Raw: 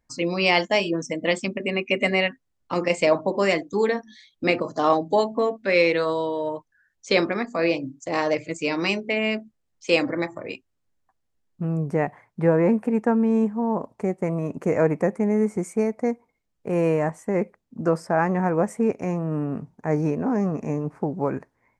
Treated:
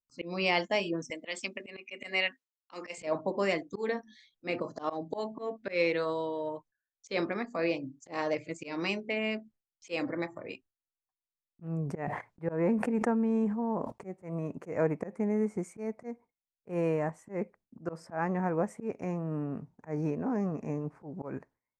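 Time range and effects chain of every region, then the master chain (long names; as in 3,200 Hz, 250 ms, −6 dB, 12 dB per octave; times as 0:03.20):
0:01.10–0:02.98: high-pass filter 210 Hz 24 dB per octave + tilt shelving filter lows −6.5 dB, about 1,200 Hz
0:11.67–0:14.05: noise gate −49 dBFS, range −32 dB + level that may fall only so fast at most 57 dB per second
whole clip: noise gate with hold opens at −49 dBFS; high-shelf EQ 7,900 Hz −7 dB; volume swells 135 ms; level −8 dB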